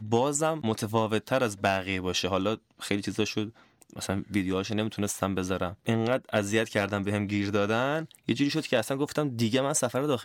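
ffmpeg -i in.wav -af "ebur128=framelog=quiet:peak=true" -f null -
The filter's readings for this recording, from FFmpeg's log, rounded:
Integrated loudness:
  I:         -28.4 LUFS
  Threshold: -38.5 LUFS
Loudness range:
  LRA:         2.9 LU
  Threshold: -49.0 LUFS
  LRA low:   -30.8 LUFS
  LRA high:  -27.8 LUFS
True peak:
  Peak:      -10.1 dBFS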